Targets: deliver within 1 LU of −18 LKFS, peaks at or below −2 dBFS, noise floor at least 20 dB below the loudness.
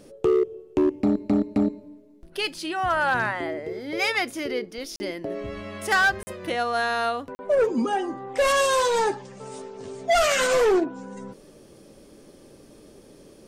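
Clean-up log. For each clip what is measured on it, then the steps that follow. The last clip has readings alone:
share of clipped samples 0.7%; peaks flattened at −15.0 dBFS; number of dropouts 3; longest dropout 40 ms; integrated loudness −24.5 LKFS; sample peak −15.0 dBFS; target loudness −18.0 LKFS
→ clipped peaks rebuilt −15 dBFS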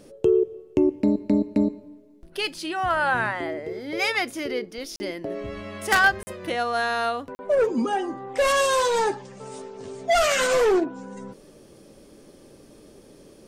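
share of clipped samples 0.0%; number of dropouts 3; longest dropout 40 ms
→ repair the gap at 0:04.96/0:06.23/0:07.35, 40 ms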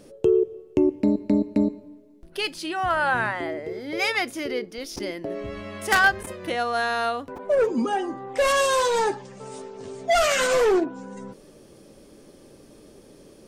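number of dropouts 0; integrated loudness −24.0 LKFS; sample peak −6.0 dBFS; target loudness −18.0 LKFS
→ level +6 dB
brickwall limiter −2 dBFS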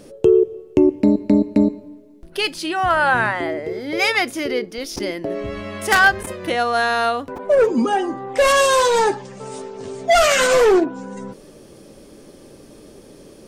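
integrated loudness −18.0 LKFS; sample peak −2.0 dBFS; background noise floor −45 dBFS

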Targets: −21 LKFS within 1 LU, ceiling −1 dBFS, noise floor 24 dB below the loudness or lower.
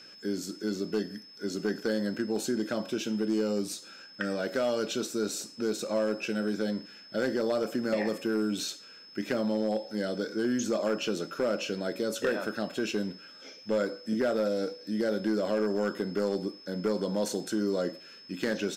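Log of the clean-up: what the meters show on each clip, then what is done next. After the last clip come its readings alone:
share of clipped samples 0.6%; peaks flattened at −21.0 dBFS; interfering tone 5,200 Hz; level of the tone −49 dBFS; integrated loudness −31.0 LKFS; sample peak −21.0 dBFS; target loudness −21.0 LKFS
→ clipped peaks rebuilt −21 dBFS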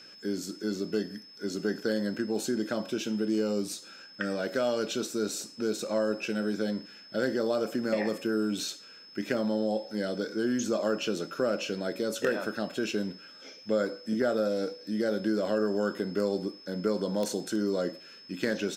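share of clipped samples 0.0%; interfering tone 5,200 Hz; level of the tone −49 dBFS
→ notch filter 5,200 Hz, Q 30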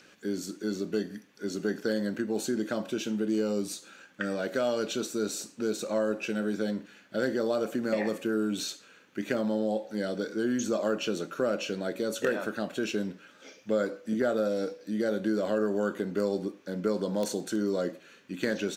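interfering tone none found; integrated loudness −31.0 LKFS; sample peak −13.0 dBFS; target loudness −21.0 LKFS
→ level +10 dB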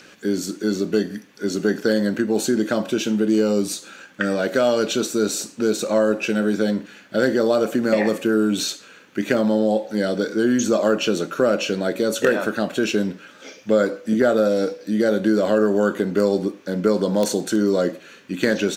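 integrated loudness −21.0 LKFS; sample peak −3.0 dBFS; background noise floor −47 dBFS

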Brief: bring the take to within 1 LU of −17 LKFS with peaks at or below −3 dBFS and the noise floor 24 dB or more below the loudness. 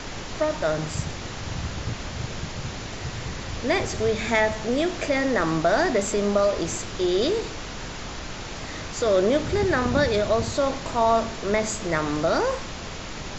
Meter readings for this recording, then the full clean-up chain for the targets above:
background noise floor −35 dBFS; target noise floor −49 dBFS; integrated loudness −25.0 LKFS; sample peak −8.5 dBFS; target loudness −17.0 LKFS
→ noise reduction from a noise print 14 dB
level +8 dB
brickwall limiter −3 dBFS

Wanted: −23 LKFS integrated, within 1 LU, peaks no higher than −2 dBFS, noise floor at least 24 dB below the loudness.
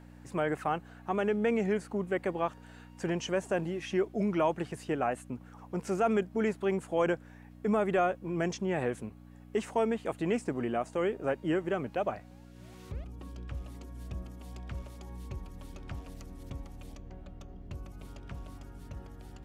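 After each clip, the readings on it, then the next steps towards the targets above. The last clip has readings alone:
mains hum 60 Hz; hum harmonics up to 300 Hz; level of the hum −50 dBFS; integrated loudness −32.5 LKFS; sample peak −17.0 dBFS; target loudness −23.0 LKFS
→ hum removal 60 Hz, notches 5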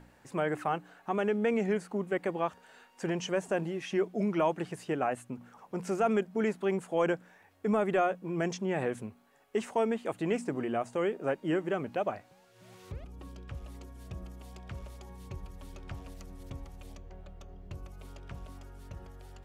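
mains hum none found; integrated loudness −32.0 LKFS; sample peak −17.0 dBFS; target loudness −23.0 LKFS
→ level +9 dB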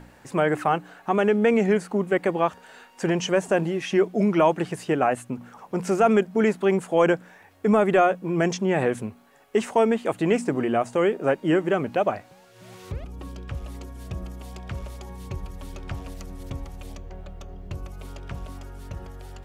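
integrated loudness −23.0 LKFS; sample peak −8.0 dBFS; background noise floor −53 dBFS

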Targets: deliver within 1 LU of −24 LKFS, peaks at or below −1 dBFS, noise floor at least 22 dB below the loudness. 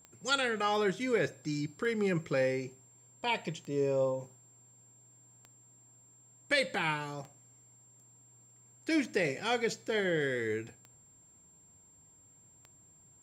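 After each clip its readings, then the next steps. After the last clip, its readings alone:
number of clicks 8; interfering tone 7,400 Hz; level of the tone −59 dBFS; integrated loudness −32.5 LKFS; sample peak −16.0 dBFS; target loudness −24.0 LKFS
→ click removal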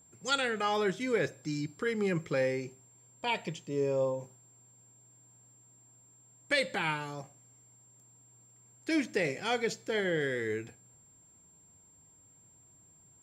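number of clicks 0; interfering tone 7,400 Hz; level of the tone −59 dBFS
→ notch filter 7,400 Hz, Q 30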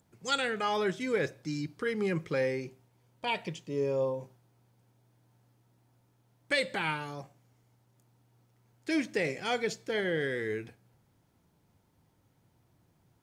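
interfering tone none found; integrated loudness −32.5 LKFS; sample peak −16.0 dBFS; target loudness −24.0 LKFS
→ level +8.5 dB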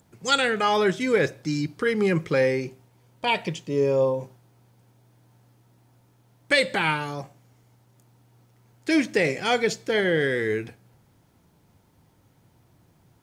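integrated loudness −24.0 LKFS; sample peak −7.5 dBFS; background noise floor −62 dBFS

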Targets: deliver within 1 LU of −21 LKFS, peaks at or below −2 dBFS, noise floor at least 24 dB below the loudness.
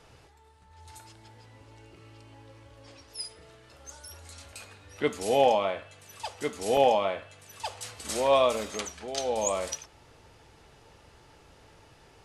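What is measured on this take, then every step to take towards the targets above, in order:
number of dropouts 3; longest dropout 1.1 ms; integrated loudness −28.5 LKFS; sample peak −10.5 dBFS; target loudness −21.0 LKFS
→ repair the gap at 0:04.08/0:06.77/0:07.86, 1.1 ms
level +7.5 dB

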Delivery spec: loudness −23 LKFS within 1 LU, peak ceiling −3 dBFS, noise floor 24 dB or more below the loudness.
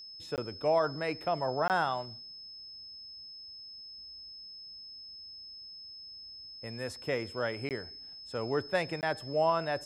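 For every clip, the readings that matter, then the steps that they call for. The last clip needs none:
number of dropouts 4; longest dropout 18 ms; interfering tone 5,200 Hz; level of the tone −45 dBFS; integrated loudness −35.0 LKFS; sample peak −16.5 dBFS; target loudness −23.0 LKFS
→ repair the gap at 0:00.36/0:01.68/0:07.69/0:09.01, 18 ms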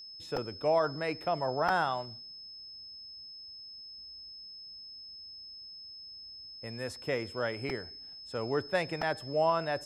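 number of dropouts 0; interfering tone 5,200 Hz; level of the tone −45 dBFS
→ notch filter 5,200 Hz, Q 30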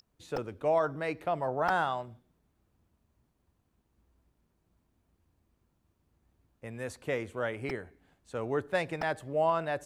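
interfering tone none found; integrated loudness −32.5 LKFS; sample peak −14.5 dBFS; target loudness −23.0 LKFS
→ level +9.5 dB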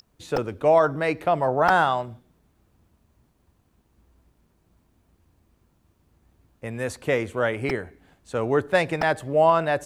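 integrated loudness −23.0 LKFS; sample peak −5.0 dBFS; background noise floor −66 dBFS

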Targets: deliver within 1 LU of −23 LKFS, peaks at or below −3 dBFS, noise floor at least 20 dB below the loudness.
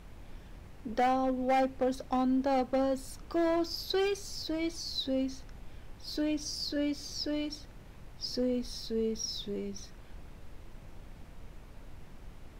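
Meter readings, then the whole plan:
share of clipped samples 1.3%; peaks flattened at −23.5 dBFS; background noise floor −51 dBFS; target noise floor −53 dBFS; integrated loudness −32.5 LKFS; sample peak −23.5 dBFS; target loudness −23.0 LKFS
→ clipped peaks rebuilt −23.5 dBFS
noise reduction from a noise print 6 dB
level +9.5 dB

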